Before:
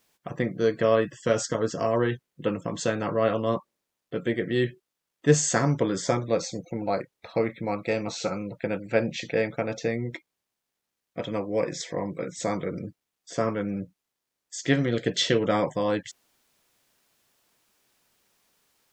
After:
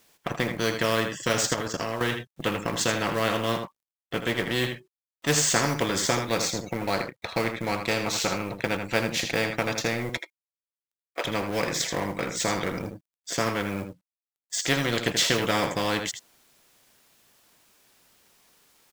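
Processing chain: companding laws mixed up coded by A; 1.54–2.01 s: level held to a coarse grid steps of 17 dB; 10.09–11.25 s: inverse Chebyshev high-pass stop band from 210 Hz, stop band 40 dB; delay 80 ms -12 dB; spectrum-flattening compressor 2:1

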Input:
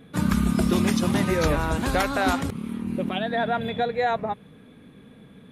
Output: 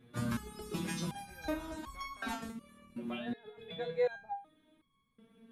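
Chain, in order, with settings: 2.61–3.74 s: compressor with a negative ratio -30 dBFS, ratio -1; resonator arpeggio 2.7 Hz 120–1100 Hz

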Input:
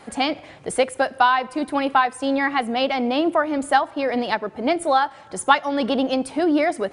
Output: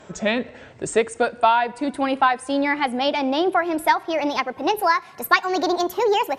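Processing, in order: gliding tape speed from 77% -> 140%; band-stop 1.2 kHz, Q 14

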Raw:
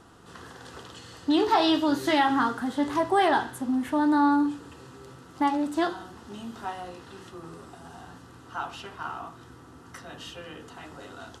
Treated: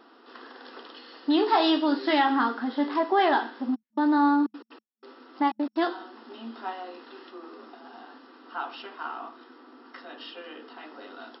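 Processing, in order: 3.74–5.76 s: trance gate "xxx.x.x...xxx" 185 bpm -60 dB; FFT band-pass 220–5500 Hz

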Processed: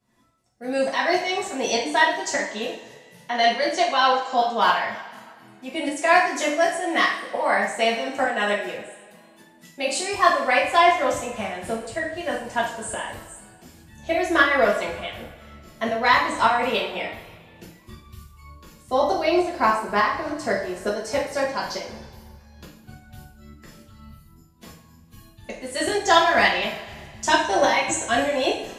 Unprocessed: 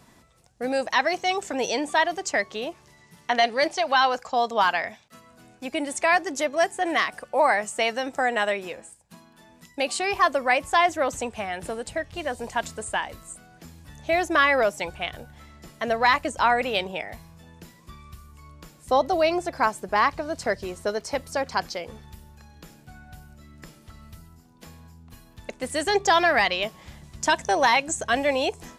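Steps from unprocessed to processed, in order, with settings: tremolo saw up 3.4 Hz, depth 75%; spectral noise reduction 12 dB; two-slope reverb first 0.49 s, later 1.9 s, from -16 dB, DRR -5.5 dB; trim -1.5 dB

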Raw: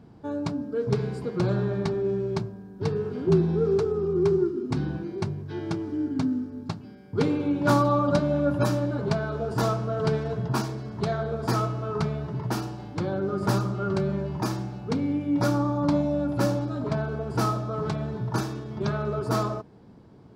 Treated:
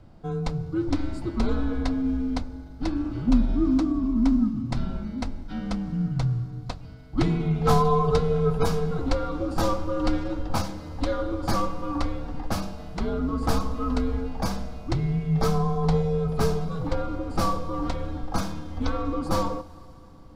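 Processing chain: Schroeder reverb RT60 3.6 s, combs from 33 ms, DRR 18.5 dB; frequency shift -130 Hz; trim +1.5 dB

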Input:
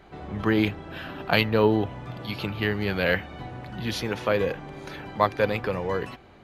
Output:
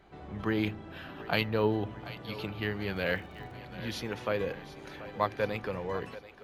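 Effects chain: on a send: two-band feedback delay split 360 Hz, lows 83 ms, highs 736 ms, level -15 dB; 2.95–3.56 s: on the sum: crackle 170 per s -> 51 per s -39 dBFS; trim -7.5 dB

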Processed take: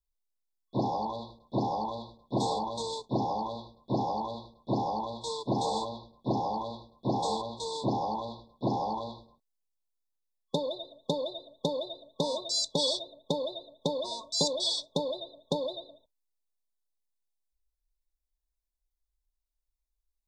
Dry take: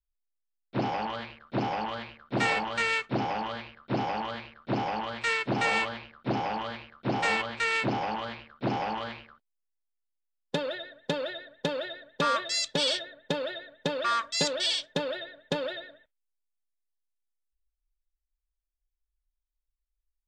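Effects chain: FFT band-reject 1.1–3.4 kHz

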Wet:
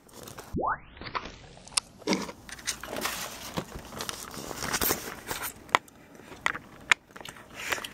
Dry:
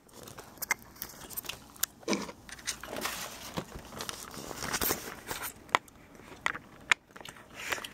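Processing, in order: 0.54 s: tape start 1.68 s; 5.81–6.31 s: comb of notches 1.1 kHz; trim +3.5 dB

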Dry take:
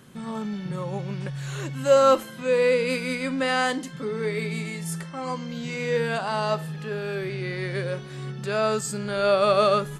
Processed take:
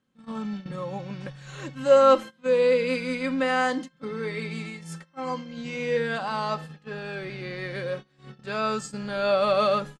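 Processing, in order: low-pass 6.3 kHz 12 dB/octave; gate -32 dBFS, range -22 dB; comb 3.8 ms, depth 46%; trim -2.5 dB

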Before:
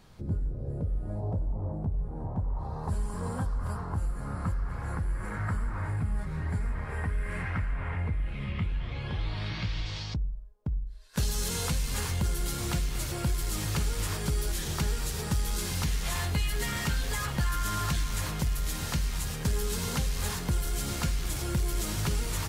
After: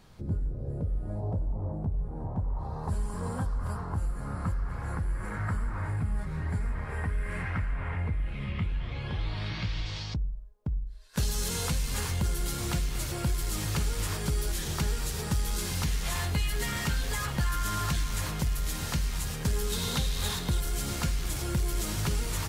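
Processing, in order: 19.72–20.60 s: peaking EQ 3.7 kHz +10.5 dB 0.3 oct

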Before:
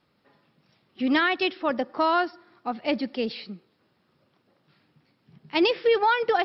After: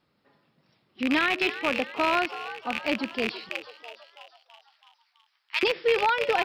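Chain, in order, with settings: rattle on loud lows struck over -43 dBFS, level -12 dBFS; 3.49–5.63 s: high-pass 1.1 kHz 24 dB/octave; frequency-shifting echo 329 ms, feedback 56%, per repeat +110 Hz, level -13 dB; trim -2.5 dB

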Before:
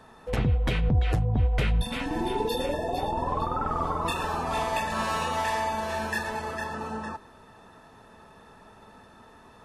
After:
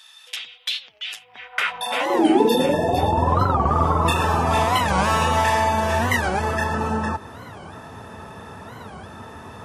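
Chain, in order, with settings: band-stop 4.2 kHz, Q 8.6; in parallel at 0 dB: compression, threshold -38 dBFS, peak gain reduction 17.5 dB; on the sum: high-pass sweep 3.5 kHz -> 87 Hz, 1.10–2.99 s; warped record 45 rpm, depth 250 cents; trim +6.5 dB

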